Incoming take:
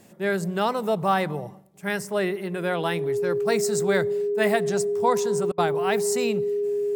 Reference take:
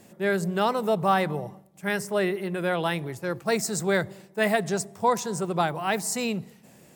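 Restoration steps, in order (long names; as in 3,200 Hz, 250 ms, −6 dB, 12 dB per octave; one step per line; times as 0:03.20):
notch filter 410 Hz, Q 30
repair the gap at 0:05.52, 59 ms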